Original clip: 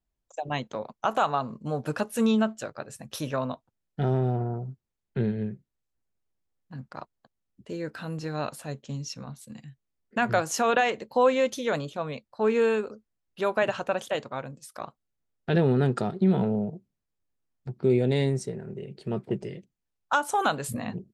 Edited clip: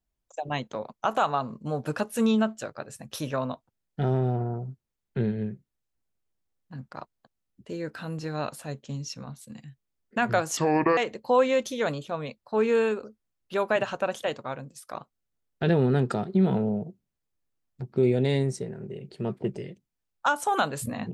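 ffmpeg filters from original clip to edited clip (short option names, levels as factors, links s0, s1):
-filter_complex "[0:a]asplit=3[s0][s1][s2];[s0]atrim=end=10.574[s3];[s1]atrim=start=10.57:end=10.84,asetpts=PTS-STARTPTS,asetrate=29547,aresample=44100[s4];[s2]atrim=start=10.836[s5];[s3][s4]acrossfade=d=0.004:c1=hsin:c2=hsin[s6];[s6][s5]acrossfade=d=0.004:c1=hsin:c2=hsin"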